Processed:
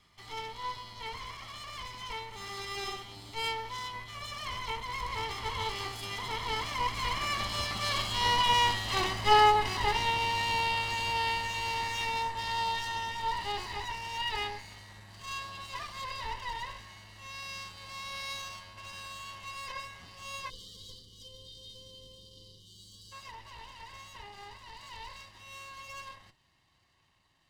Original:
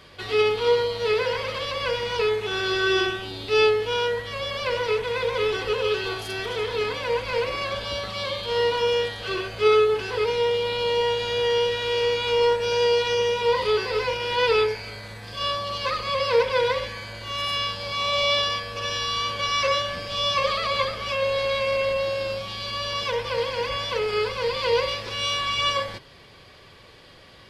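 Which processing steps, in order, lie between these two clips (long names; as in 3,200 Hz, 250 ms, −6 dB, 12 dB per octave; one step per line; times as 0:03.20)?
lower of the sound and its delayed copy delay 1 ms
source passing by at 0:08.90, 15 m/s, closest 22 metres
gain on a spectral selection 0:20.50–0:23.12, 530–2,900 Hz −29 dB
level +1.5 dB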